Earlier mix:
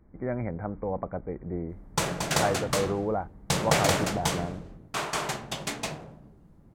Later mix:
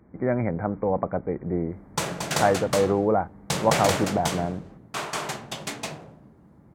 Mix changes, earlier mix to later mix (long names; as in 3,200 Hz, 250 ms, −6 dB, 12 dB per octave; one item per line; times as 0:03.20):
speech +7.0 dB
master: add high-pass filter 100 Hz 12 dB per octave